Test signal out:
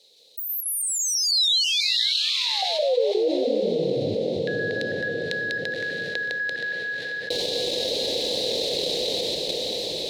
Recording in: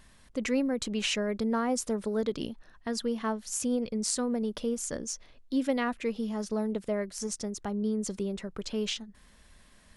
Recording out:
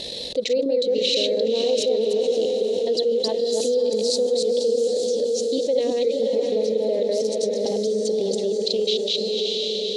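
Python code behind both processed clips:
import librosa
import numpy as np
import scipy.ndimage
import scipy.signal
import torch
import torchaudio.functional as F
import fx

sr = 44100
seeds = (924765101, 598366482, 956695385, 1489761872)

p1 = fx.reverse_delay(x, sr, ms=164, wet_db=-0.5)
p2 = fx.peak_eq(p1, sr, hz=1100.0, db=-9.5, octaves=0.46)
p3 = fx.level_steps(p2, sr, step_db=16)
p4 = p2 + F.gain(torch.from_numpy(p3), 1.0).numpy()
p5 = fx.transient(p4, sr, attack_db=3, sustain_db=-11)
p6 = fx.double_bandpass(p5, sr, hz=1400.0, octaves=3.0)
p7 = fx.echo_diffused(p6, sr, ms=553, feedback_pct=44, wet_db=-7.0)
p8 = fx.env_flatten(p7, sr, amount_pct=70)
y = F.gain(torch.from_numpy(p8), 6.0).numpy()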